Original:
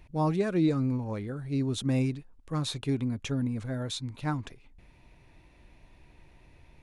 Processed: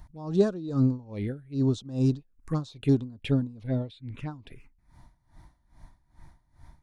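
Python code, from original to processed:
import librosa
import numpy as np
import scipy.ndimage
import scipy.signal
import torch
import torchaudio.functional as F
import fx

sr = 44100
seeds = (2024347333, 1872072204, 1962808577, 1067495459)

y = fx.lowpass(x, sr, hz=5200.0, slope=12, at=(3.67, 4.31))
y = fx.env_phaser(y, sr, low_hz=410.0, high_hz=2200.0, full_db=-27.0)
y = y * 10.0 ** (-21 * (0.5 - 0.5 * np.cos(2.0 * np.pi * 2.4 * np.arange(len(y)) / sr)) / 20.0)
y = F.gain(torch.from_numpy(y), 7.5).numpy()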